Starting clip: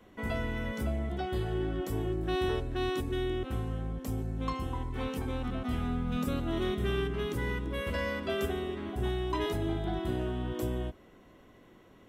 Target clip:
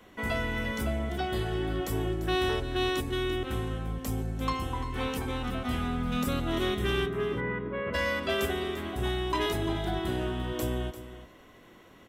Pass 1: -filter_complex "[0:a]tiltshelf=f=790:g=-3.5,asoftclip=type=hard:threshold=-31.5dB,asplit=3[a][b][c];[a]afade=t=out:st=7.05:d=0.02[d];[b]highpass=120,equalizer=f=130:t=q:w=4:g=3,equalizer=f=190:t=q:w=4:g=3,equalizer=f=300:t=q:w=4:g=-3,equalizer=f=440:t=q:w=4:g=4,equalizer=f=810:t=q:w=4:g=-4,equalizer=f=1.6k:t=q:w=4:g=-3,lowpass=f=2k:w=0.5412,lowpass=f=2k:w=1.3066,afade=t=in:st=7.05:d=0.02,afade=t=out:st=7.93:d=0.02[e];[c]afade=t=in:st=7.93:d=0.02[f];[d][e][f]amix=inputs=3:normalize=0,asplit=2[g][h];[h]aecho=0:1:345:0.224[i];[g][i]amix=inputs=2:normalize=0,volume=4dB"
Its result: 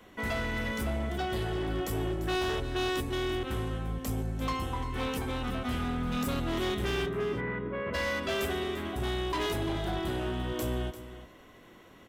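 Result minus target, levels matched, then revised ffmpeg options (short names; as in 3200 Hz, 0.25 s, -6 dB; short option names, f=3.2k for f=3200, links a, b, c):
hard clip: distortion +16 dB
-filter_complex "[0:a]tiltshelf=f=790:g=-3.5,asoftclip=type=hard:threshold=-25dB,asplit=3[a][b][c];[a]afade=t=out:st=7.05:d=0.02[d];[b]highpass=120,equalizer=f=130:t=q:w=4:g=3,equalizer=f=190:t=q:w=4:g=3,equalizer=f=300:t=q:w=4:g=-3,equalizer=f=440:t=q:w=4:g=4,equalizer=f=810:t=q:w=4:g=-4,equalizer=f=1.6k:t=q:w=4:g=-3,lowpass=f=2k:w=0.5412,lowpass=f=2k:w=1.3066,afade=t=in:st=7.05:d=0.02,afade=t=out:st=7.93:d=0.02[e];[c]afade=t=in:st=7.93:d=0.02[f];[d][e][f]amix=inputs=3:normalize=0,asplit=2[g][h];[h]aecho=0:1:345:0.224[i];[g][i]amix=inputs=2:normalize=0,volume=4dB"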